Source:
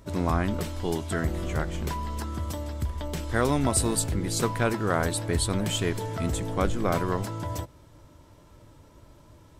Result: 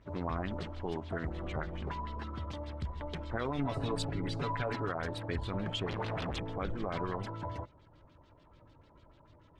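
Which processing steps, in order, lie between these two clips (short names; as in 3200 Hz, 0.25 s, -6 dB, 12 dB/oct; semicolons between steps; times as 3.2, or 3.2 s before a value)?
5.86–6.39 Schmitt trigger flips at -38.5 dBFS; LFO low-pass sine 6.8 Hz 750–4100 Hz; 3.58–4.89 comb 7.1 ms, depth 84%; limiter -16 dBFS, peak gain reduction 11 dB; gain -8.5 dB; Opus 16 kbps 48000 Hz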